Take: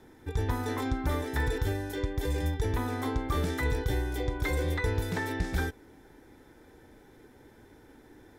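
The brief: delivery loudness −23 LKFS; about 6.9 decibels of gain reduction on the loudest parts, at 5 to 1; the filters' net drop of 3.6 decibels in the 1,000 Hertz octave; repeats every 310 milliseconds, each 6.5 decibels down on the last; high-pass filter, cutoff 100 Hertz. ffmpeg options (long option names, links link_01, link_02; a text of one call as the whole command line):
ffmpeg -i in.wav -af "highpass=100,equalizer=frequency=1000:width_type=o:gain=-4.5,acompressor=threshold=-36dB:ratio=5,aecho=1:1:310|620|930|1240|1550|1860:0.473|0.222|0.105|0.0491|0.0231|0.0109,volume=16dB" out.wav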